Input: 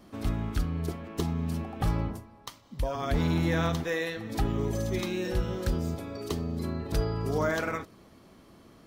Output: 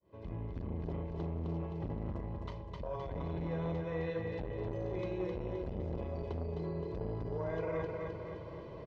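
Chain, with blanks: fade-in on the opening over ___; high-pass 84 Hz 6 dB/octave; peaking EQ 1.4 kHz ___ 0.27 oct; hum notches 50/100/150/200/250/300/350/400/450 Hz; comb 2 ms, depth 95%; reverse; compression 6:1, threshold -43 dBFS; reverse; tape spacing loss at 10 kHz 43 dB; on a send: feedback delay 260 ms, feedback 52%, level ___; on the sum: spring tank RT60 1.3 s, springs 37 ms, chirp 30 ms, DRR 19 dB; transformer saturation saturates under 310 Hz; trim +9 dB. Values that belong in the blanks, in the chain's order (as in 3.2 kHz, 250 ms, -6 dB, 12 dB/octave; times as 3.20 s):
0.75 s, -15 dB, -4 dB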